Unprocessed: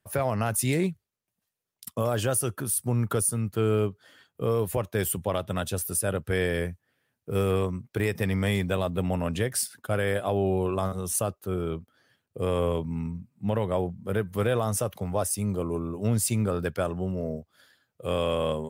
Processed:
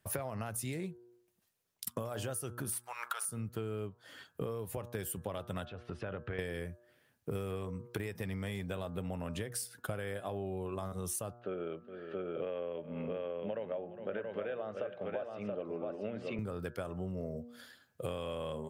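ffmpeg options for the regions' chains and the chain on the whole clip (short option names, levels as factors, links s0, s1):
-filter_complex "[0:a]asettb=1/sr,asplit=3[s0][s1][s2];[s0]atrim=end=2.724[s3];[s1]atrim=start=2.72:end=3.25,asetpts=PTS-STARTPTS,afade=t=in:d=0.004:c=qsin,afade=t=out:st=0.526:d=0.004:c=qsin,aeval=exprs='if(lt(val(0),0),0.708*val(0),val(0))':c=same,highpass=f=820:w=0.5412,highpass=f=820:w=1.3066,equalizer=f=1900:w=0.38:g=8[s4];[s2]atrim=start=3.246[s5];[s3][s4]acrossfade=d=0.004:c1=hsin:c2=qsin[s6];[s6][s5]acrossfade=d=0.004:c1=qsin:c2=hsin,asettb=1/sr,asplit=3[s7][s8][s9];[s7]atrim=end=5.654[s10];[s8]atrim=start=5.65:end=6.39,asetpts=PTS-STARTPTS,afade=t=in:d=0.004:c=qsin,afade=t=out:st=0.736:d=0.004:c=qsin,lowpass=f=3100:w=0.5412,lowpass=f=3100:w=1.3066,equalizer=f=1200:t=o:w=2.4:g=3.5,acompressor=threshold=0.00794:ratio=3:attack=3.2:release=140:knee=1:detection=peak[s11];[s9]atrim=start=6.386[s12];[s10][s11]acrossfade=d=0.004:c1=hsin:c2=qsin[s13];[s13][s12]acrossfade=d=0.004:c1=qsin:c2=hsin,asettb=1/sr,asplit=3[s14][s15][s16];[s14]atrim=end=11.394[s17];[s15]atrim=start=11.39:end=16.39,asetpts=PTS-STARTPTS,afade=t=in:d=0.004:c=qsin,afade=t=out:st=4.996:d=0.004:c=qsin,highpass=260,equalizer=f=580:t=q:w=4:g=9,equalizer=f=1000:t=q:w=4:g=-7,equalizer=f=1600:t=q:w=4:g=5,equalizer=f=2800:t=q:w=4:g=5,lowpass=f=3000:w=0.5412,lowpass=f=3000:w=1.3066,aecho=1:1:411|677:0.106|0.473,atrim=end_sample=220500[s18];[s16]atrim=start=16.386[s19];[s17][s18]acrossfade=d=0.004:c1=hsin:c2=qsin[s20];[s20][s19]acrossfade=d=0.004:c1=qsin:c2=hsin,bandreject=f=119.8:t=h:w=4,bandreject=f=239.6:t=h:w=4,bandreject=f=359.4:t=h:w=4,bandreject=f=479.2:t=h:w=4,bandreject=f=599:t=h:w=4,bandreject=f=718.8:t=h:w=4,bandreject=f=838.6:t=h:w=4,bandreject=f=958.4:t=h:w=4,bandreject=f=1078.2:t=h:w=4,bandreject=f=1198:t=h:w=4,bandreject=f=1317.8:t=h:w=4,bandreject=f=1437.6:t=h:w=4,bandreject=f=1557.4:t=h:w=4,bandreject=f=1677.2:t=h:w=4,acompressor=threshold=0.0112:ratio=16,volume=1.58"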